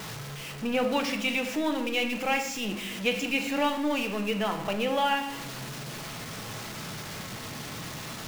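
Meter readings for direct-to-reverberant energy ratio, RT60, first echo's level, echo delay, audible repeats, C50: 5.5 dB, 0.85 s, none, none, none, 9.0 dB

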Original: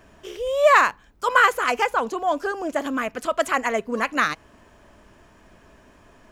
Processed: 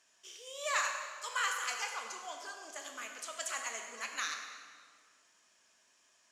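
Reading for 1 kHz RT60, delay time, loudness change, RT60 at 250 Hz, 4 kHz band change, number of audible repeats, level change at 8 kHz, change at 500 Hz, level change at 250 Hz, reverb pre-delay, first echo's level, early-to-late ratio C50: 1.8 s, none, -16.0 dB, 2.3 s, -7.5 dB, none, -0.5 dB, -24.5 dB, -31.0 dB, 8 ms, none, 4.0 dB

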